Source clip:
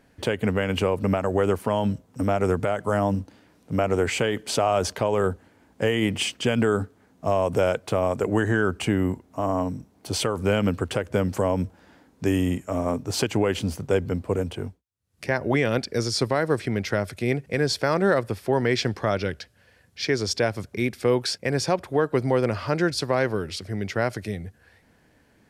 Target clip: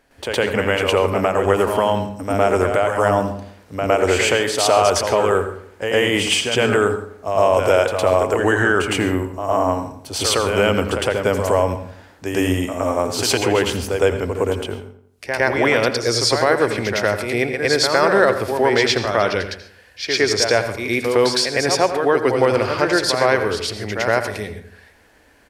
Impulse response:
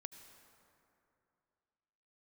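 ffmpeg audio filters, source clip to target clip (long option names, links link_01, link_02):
-filter_complex "[0:a]equalizer=frequency=160:width_type=o:width=1.6:gain=-13.5,asplit=2[link_01][link_02];[link_02]adelay=85,lowpass=frequency=2300:poles=1,volume=-11dB,asplit=2[link_03][link_04];[link_04]adelay=85,lowpass=frequency=2300:poles=1,volume=0.46,asplit=2[link_05][link_06];[link_06]adelay=85,lowpass=frequency=2300:poles=1,volume=0.46,asplit=2[link_07][link_08];[link_08]adelay=85,lowpass=frequency=2300:poles=1,volume=0.46,asplit=2[link_09][link_10];[link_10]adelay=85,lowpass=frequency=2300:poles=1,volume=0.46[link_11];[link_01][link_03][link_05][link_07][link_09][link_11]amix=inputs=6:normalize=0,asplit=2[link_12][link_13];[1:a]atrim=start_sample=2205,afade=type=out:start_time=0.2:duration=0.01,atrim=end_sample=9261,adelay=110[link_14];[link_13][link_14]afir=irnorm=-1:irlink=0,volume=12dB[link_15];[link_12][link_15]amix=inputs=2:normalize=0,volume=2dB"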